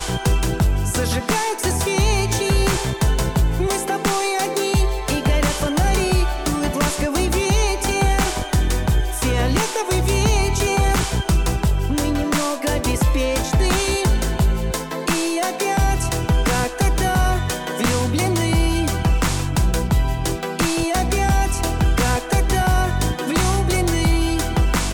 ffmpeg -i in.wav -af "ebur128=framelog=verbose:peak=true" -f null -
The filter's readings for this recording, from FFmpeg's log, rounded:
Integrated loudness:
  I:         -19.9 LUFS
  Threshold: -29.9 LUFS
Loudness range:
  LRA:         0.8 LU
  Threshold: -39.9 LUFS
  LRA low:   -20.2 LUFS
  LRA high:  -19.4 LUFS
True peak:
  Peak:       -9.3 dBFS